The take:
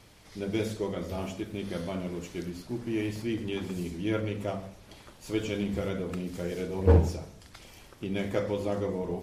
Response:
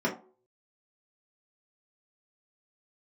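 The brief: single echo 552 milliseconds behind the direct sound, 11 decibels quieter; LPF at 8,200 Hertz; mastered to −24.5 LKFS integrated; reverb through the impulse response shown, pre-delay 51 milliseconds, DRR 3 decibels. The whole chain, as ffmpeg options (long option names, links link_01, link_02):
-filter_complex "[0:a]lowpass=8200,aecho=1:1:552:0.282,asplit=2[link_01][link_02];[1:a]atrim=start_sample=2205,adelay=51[link_03];[link_02][link_03]afir=irnorm=-1:irlink=0,volume=-13.5dB[link_04];[link_01][link_04]amix=inputs=2:normalize=0,volume=4dB"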